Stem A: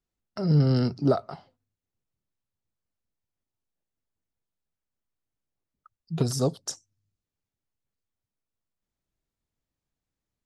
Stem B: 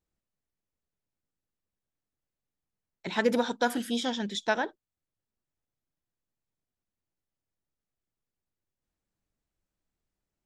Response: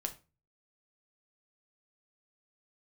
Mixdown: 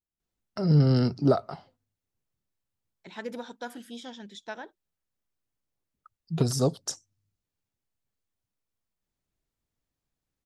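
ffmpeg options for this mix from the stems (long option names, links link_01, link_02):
-filter_complex "[0:a]adelay=200,volume=0.5dB[link_01];[1:a]volume=-11.5dB[link_02];[link_01][link_02]amix=inputs=2:normalize=0"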